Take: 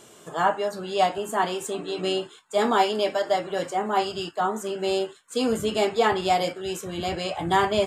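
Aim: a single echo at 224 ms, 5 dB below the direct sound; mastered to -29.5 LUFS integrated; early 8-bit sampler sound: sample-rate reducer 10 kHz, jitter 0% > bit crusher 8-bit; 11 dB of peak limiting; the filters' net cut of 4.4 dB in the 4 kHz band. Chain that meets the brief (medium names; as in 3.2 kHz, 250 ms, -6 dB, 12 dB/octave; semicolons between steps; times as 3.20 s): peaking EQ 4 kHz -6.5 dB; peak limiter -19.5 dBFS; delay 224 ms -5 dB; sample-rate reducer 10 kHz, jitter 0%; bit crusher 8-bit; trim -1 dB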